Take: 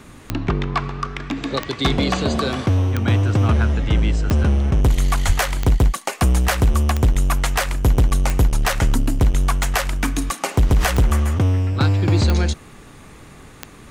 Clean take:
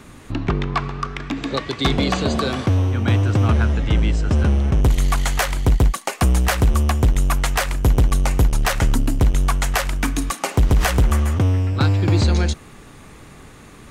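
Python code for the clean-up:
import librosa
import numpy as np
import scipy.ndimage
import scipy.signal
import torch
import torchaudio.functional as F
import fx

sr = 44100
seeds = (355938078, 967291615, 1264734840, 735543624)

y = fx.fix_declick_ar(x, sr, threshold=10.0)
y = fx.highpass(y, sr, hz=140.0, slope=24, at=(5.26, 5.38), fade=0.02)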